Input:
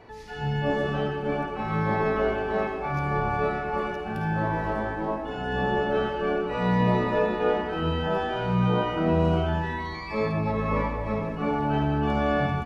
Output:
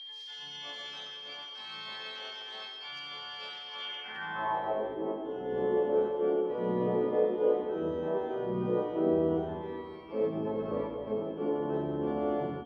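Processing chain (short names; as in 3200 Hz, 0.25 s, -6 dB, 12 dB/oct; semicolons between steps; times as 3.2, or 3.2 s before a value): harmoniser +3 st -9 dB, +4 st -17 dB, +12 st -10 dB; whine 3200 Hz -37 dBFS; band-pass sweep 4300 Hz -> 400 Hz, 3.73–4.94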